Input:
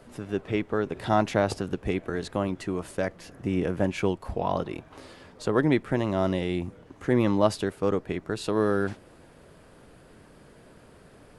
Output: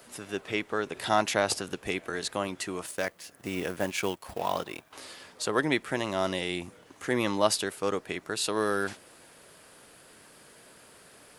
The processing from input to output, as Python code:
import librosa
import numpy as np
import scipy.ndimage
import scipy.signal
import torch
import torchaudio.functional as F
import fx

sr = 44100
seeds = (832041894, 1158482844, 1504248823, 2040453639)

y = fx.law_mismatch(x, sr, coded='A', at=(2.86, 4.93))
y = fx.tilt_eq(y, sr, slope=3.5)